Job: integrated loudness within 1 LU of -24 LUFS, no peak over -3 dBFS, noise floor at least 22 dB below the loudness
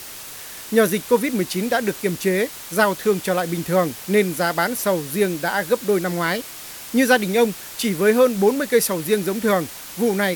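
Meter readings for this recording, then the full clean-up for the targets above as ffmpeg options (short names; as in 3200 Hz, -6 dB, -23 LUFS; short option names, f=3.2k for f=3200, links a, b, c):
noise floor -36 dBFS; noise floor target -43 dBFS; loudness -20.5 LUFS; peak -3.0 dBFS; loudness target -24.0 LUFS
-> -af "afftdn=nr=7:nf=-36"
-af "volume=-3.5dB"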